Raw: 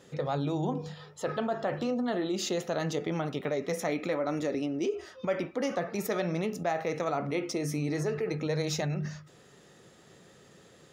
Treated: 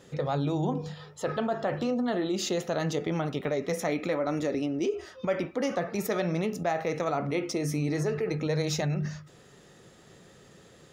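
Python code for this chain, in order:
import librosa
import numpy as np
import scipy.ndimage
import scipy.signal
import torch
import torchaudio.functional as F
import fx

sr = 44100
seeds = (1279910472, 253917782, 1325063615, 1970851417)

y = fx.low_shelf(x, sr, hz=68.0, db=9.0)
y = y * librosa.db_to_amplitude(1.5)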